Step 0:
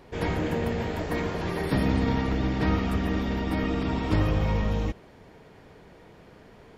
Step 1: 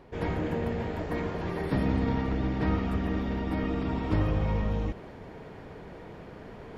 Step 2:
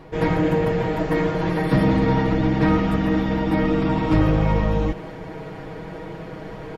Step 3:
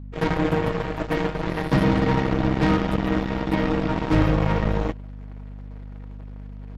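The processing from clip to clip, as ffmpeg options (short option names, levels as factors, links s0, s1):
-af "areverse,acompressor=mode=upward:threshold=0.0282:ratio=2.5,areverse,highshelf=f=3300:g=-10,volume=0.75"
-filter_complex "[0:a]aecho=1:1:6.3:0.84,asplit=2[s0][s1];[s1]aeval=exprs='0.0944*(abs(mod(val(0)/0.0944+3,4)-2)-1)':c=same,volume=0.376[s2];[s0][s2]amix=inputs=2:normalize=0,volume=1.78"
-af "aeval=exprs='0.422*(cos(1*acos(clip(val(0)/0.422,-1,1)))-cos(1*PI/2))+0.0266*(cos(5*acos(clip(val(0)/0.422,-1,1)))-cos(5*PI/2))+0.0266*(cos(6*acos(clip(val(0)/0.422,-1,1)))-cos(6*PI/2))+0.075*(cos(7*acos(clip(val(0)/0.422,-1,1)))-cos(7*PI/2))+0.0299*(cos(8*acos(clip(val(0)/0.422,-1,1)))-cos(8*PI/2))':c=same,aeval=exprs='val(0)+0.0224*(sin(2*PI*50*n/s)+sin(2*PI*2*50*n/s)/2+sin(2*PI*3*50*n/s)/3+sin(2*PI*4*50*n/s)/4+sin(2*PI*5*50*n/s)/5)':c=same,volume=0.75"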